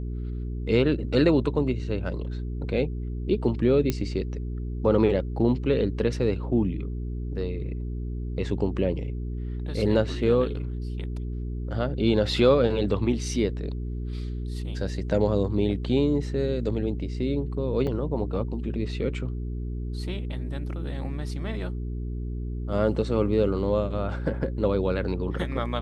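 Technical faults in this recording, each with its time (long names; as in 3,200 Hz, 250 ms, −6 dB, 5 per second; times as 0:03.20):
mains hum 60 Hz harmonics 7 −31 dBFS
0:03.90: click −11 dBFS
0:17.87: drop-out 4.6 ms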